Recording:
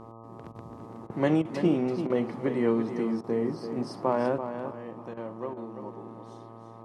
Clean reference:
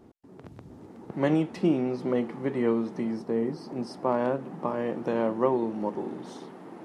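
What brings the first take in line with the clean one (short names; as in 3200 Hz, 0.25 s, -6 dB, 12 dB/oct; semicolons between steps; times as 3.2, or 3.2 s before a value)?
de-hum 113.9 Hz, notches 11; interpolate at 0.52/1.07/1.42/2.07/3.21/5.14/5.54, 28 ms; inverse comb 0.336 s -9 dB; gain 0 dB, from 4.38 s +11.5 dB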